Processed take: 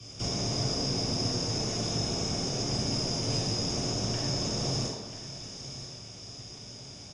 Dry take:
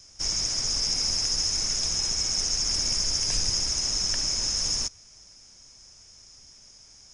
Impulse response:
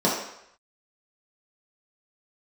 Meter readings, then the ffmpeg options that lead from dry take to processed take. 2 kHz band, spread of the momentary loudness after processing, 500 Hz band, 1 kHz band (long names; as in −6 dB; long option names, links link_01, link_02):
−3.0 dB, 14 LU, +11.0 dB, +5.0 dB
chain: -filter_complex "[0:a]aecho=1:1:989:0.0708,acrossover=split=170|1200[link_01][link_02][link_03];[link_01]acompressor=threshold=-45dB:ratio=4[link_04];[link_02]acompressor=threshold=-50dB:ratio=4[link_05];[link_03]acompressor=threshold=-39dB:ratio=4[link_06];[link_04][link_05][link_06]amix=inputs=3:normalize=0[link_07];[1:a]atrim=start_sample=2205,asetrate=28224,aresample=44100[link_08];[link_07][link_08]afir=irnorm=-1:irlink=0,volume=-7dB"